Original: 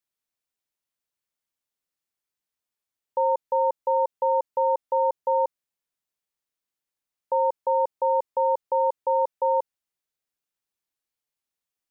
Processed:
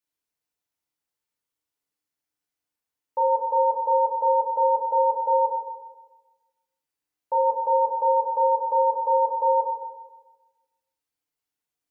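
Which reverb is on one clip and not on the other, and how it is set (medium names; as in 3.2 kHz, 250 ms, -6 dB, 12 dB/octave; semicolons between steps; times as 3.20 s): FDN reverb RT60 1.2 s, low-frequency decay 1×, high-frequency decay 0.55×, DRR -4 dB; trim -4 dB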